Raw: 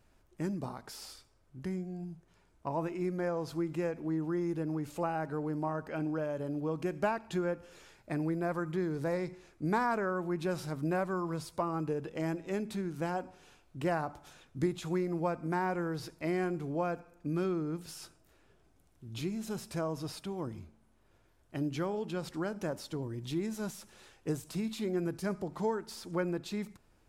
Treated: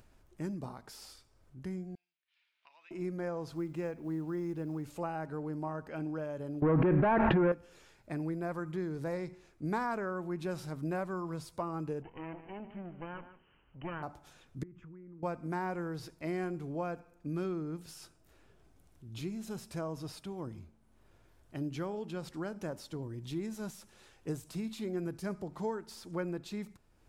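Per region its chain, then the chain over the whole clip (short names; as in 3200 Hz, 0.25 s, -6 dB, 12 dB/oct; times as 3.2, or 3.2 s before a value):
1.95–2.91 Butterworth band-pass 3000 Hz, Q 1.6 + mismatched tape noise reduction decoder only
3.48–4.84 high shelf 8800 Hz -7 dB + companded quantiser 8-bit
6.62–7.52 sample leveller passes 3 + LPF 2000 Hz 24 dB/oct + fast leveller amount 100%
12.02–14.03 minimum comb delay 0.69 ms + rippled Chebyshev low-pass 3100 Hz, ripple 6 dB + echo 0.15 s -12.5 dB
14.63–15.23 tape spacing loss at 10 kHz 40 dB + fixed phaser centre 1700 Hz, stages 4 + compressor, threshold -46 dBFS
whole clip: low shelf 170 Hz +3 dB; upward compressor, threshold -51 dBFS; gain -4 dB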